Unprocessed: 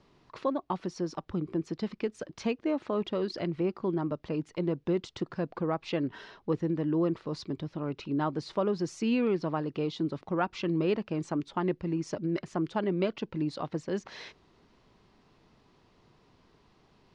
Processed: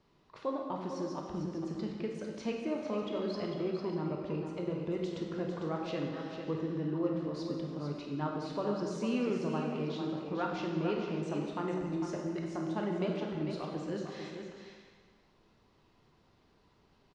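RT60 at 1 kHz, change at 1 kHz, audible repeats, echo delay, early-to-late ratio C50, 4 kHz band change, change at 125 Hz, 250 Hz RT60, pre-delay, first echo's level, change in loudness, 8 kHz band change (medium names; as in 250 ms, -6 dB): 1.5 s, -3.5 dB, 2, 450 ms, 1.0 dB, -4.0 dB, -3.5 dB, 1.5 s, 7 ms, -7.5 dB, -4.0 dB, no reading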